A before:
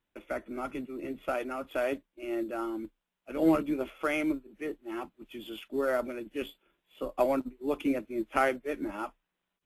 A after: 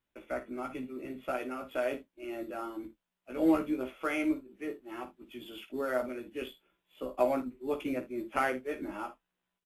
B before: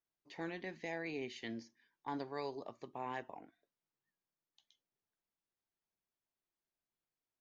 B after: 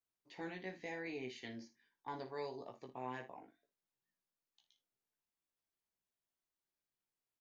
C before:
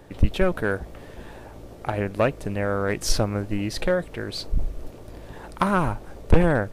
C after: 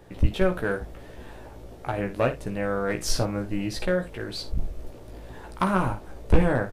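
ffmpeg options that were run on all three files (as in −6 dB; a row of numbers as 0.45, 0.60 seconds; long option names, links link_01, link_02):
-af "aecho=1:1:16|55|78:0.631|0.266|0.126,volume=-4dB"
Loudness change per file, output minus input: −2.0, −2.5, −2.0 LU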